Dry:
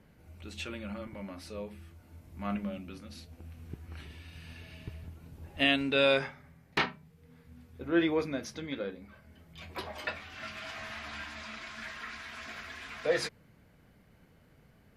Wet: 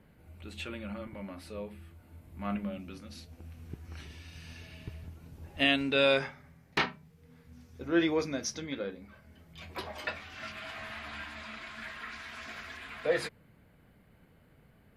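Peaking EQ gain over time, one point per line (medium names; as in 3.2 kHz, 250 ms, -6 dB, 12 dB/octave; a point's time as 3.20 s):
peaking EQ 5.8 kHz 0.57 oct
-8 dB
from 2.79 s +1.5 dB
from 3.85 s +8.5 dB
from 4.67 s +2 dB
from 7.53 s +11.5 dB
from 8.64 s +0.5 dB
from 10.52 s -8 dB
from 12.12 s -1.5 dB
from 12.77 s -10.5 dB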